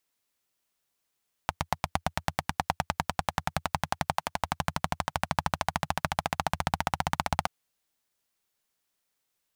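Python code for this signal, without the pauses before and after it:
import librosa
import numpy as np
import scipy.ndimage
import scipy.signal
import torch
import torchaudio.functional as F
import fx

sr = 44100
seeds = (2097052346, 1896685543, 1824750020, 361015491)

y = fx.engine_single_rev(sr, seeds[0], length_s=5.98, rpm=1000, resonances_hz=(85.0, 150.0, 790.0), end_rpm=1900)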